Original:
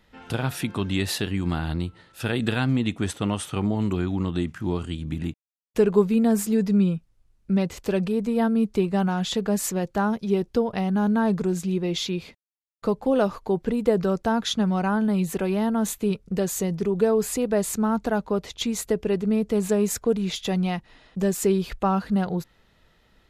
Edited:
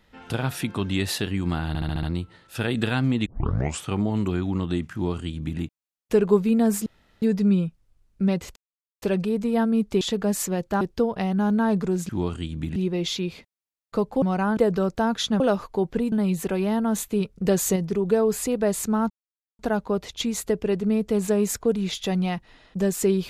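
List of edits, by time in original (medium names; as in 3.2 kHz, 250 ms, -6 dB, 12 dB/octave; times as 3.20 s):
1.68 s: stutter 0.07 s, 6 plays
2.91 s: tape start 0.57 s
4.58–5.25 s: copy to 11.66 s
6.51 s: insert room tone 0.36 s
7.85 s: insert silence 0.46 s
8.84–9.25 s: delete
10.05–10.38 s: delete
13.12–13.84 s: swap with 14.67–15.02 s
16.35–16.66 s: gain +4 dB
18.00 s: insert silence 0.49 s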